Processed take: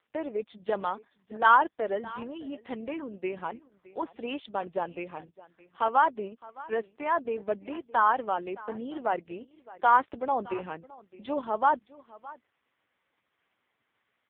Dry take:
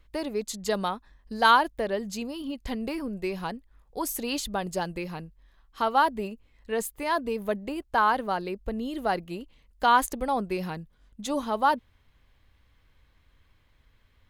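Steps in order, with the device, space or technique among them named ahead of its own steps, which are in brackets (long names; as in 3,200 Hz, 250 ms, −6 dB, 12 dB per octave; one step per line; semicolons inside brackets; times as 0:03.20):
0:07.60–0:08.98: dynamic equaliser 3,100 Hz, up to +5 dB, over −53 dBFS, Q 5.9
satellite phone (band-pass filter 310–3,200 Hz; single-tap delay 615 ms −20 dB; AMR narrowband 4.75 kbit/s 8,000 Hz)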